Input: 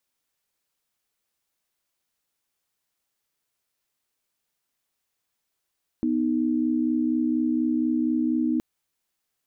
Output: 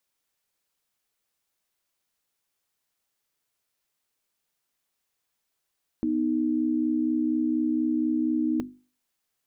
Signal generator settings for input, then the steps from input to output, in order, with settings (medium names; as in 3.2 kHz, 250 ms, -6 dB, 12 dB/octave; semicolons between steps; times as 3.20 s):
chord B3/D#4 sine, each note -23.5 dBFS 2.57 s
hum notches 50/100/150/200/250/300/350 Hz